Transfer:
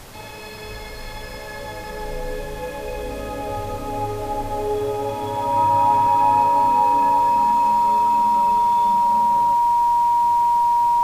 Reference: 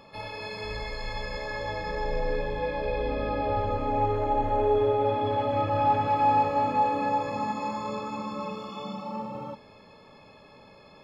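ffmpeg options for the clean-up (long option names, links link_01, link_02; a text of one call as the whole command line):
ffmpeg -i in.wav -af "bandreject=frequency=950:width=30,afftdn=noise_reduction=19:noise_floor=-33" out.wav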